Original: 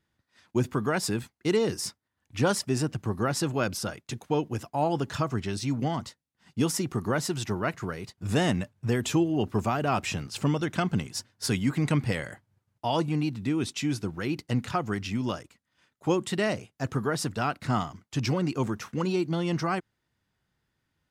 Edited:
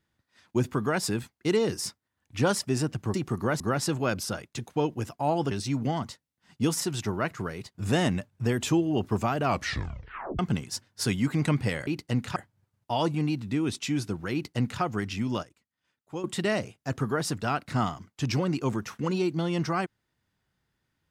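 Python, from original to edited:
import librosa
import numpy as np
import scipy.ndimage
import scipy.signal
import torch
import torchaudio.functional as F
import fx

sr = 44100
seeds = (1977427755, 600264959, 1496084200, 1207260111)

y = fx.edit(x, sr, fx.cut(start_s=5.05, length_s=0.43),
    fx.move(start_s=6.78, length_s=0.46, to_s=3.14),
    fx.tape_stop(start_s=9.88, length_s=0.94),
    fx.duplicate(start_s=14.27, length_s=0.49, to_s=12.3),
    fx.clip_gain(start_s=15.37, length_s=0.81, db=-10.5), tone=tone)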